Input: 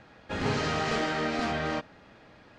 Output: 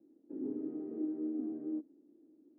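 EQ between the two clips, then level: Butterworth band-pass 310 Hz, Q 3.4; +1.0 dB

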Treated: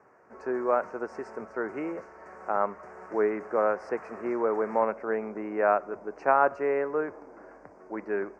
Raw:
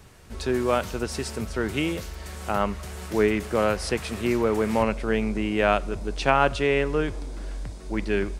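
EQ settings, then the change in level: band-pass 460–7000 Hz; Butterworth band-stop 3.5 kHz, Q 0.59; distance through air 230 m; +1.0 dB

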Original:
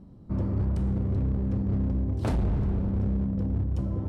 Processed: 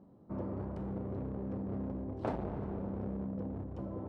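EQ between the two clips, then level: band-pass filter 680 Hz, Q 0.79; -1.0 dB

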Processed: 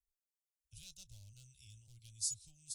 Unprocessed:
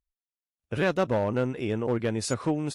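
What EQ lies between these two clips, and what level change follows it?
inverse Chebyshev band-stop 250–1900 Hz, stop band 70 dB; three-band isolator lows -22 dB, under 270 Hz, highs -19 dB, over 3.8 kHz; +17.0 dB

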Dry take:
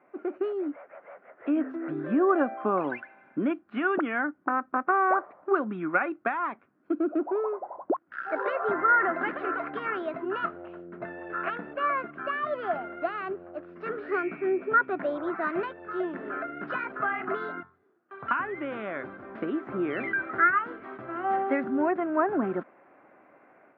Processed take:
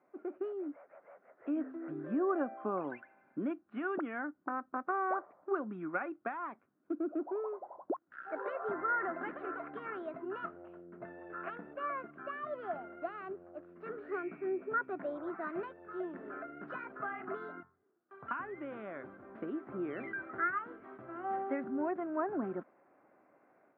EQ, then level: treble shelf 2.3 kHz -11 dB; -8.5 dB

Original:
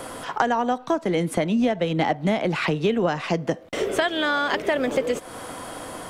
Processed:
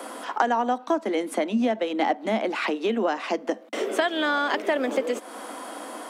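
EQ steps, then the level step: rippled Chebyshev high-pass 210 Hz, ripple 3 dB; 0.0 dB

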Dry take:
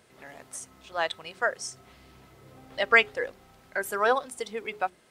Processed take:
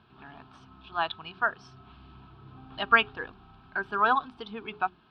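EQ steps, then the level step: low-pass 3.9 kHz 12 dB/octave; distance through air 180 m; static phaser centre 2 kHz, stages 6; +5.5 dB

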